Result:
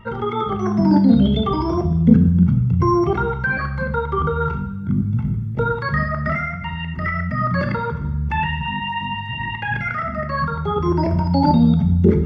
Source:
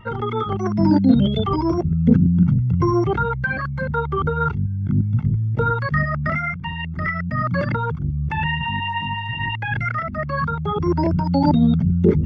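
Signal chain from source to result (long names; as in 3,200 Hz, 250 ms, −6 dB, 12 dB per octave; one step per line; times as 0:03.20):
floating-point word with a short mantissa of 8 bits
coupled-rooms reverb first 0.76 s, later 1.9 s, DRR 4.5 dB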